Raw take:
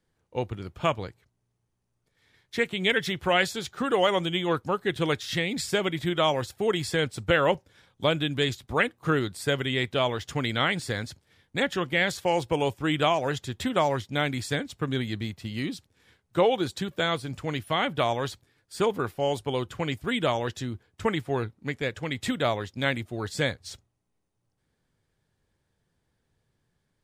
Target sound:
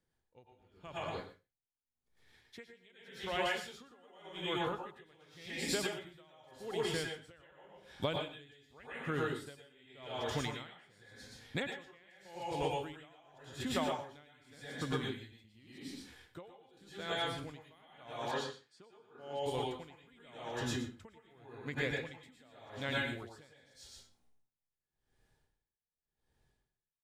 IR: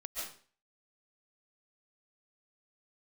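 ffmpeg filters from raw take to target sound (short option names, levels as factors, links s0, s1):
-filter_complex "[0:a]dynaudnorm=f=440:g=13:m=2.99[s0];[1:a]atrim=start_sample=2205,asetrate=57330,aresample=44100[s1];[s0][s1]afir=irnorm=-1:irlink=0,acompressor=threshold=0.0251:ratio=6,asettb=1/sr,asplit=3[s2][s3][s4];[s2]atrim=end=18.314[s5];[s3]atrim=start=18.31:end=19.46,asetpts=PTS-STARTPTS,afade=t=in:d=0.004:c=qsin,afade=t=out:st=1.146:d=0.004:c=qsin,highpass=150,lowpass=5900[s6];[s4]atrim=start=19.456[s7];[s5][s6]acrossfade=d=0.004:c1=hsin:c2=qsin[s8];[s8][s7]acrossfade=d=0.004:c1=qsin:c2=hsin,aecho=1:1:121:0.355,aeval=exprs='val(0)*pow(10,-29*(0.5-0.5*cos(2*PI*0.87*n/s))/20)':c=same"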